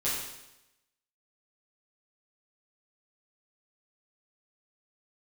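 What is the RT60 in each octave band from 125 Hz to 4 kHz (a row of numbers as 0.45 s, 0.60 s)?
0.90 s, 0.90 s, 0.95 s, 0.90 s, 0.90 s, 0.90 s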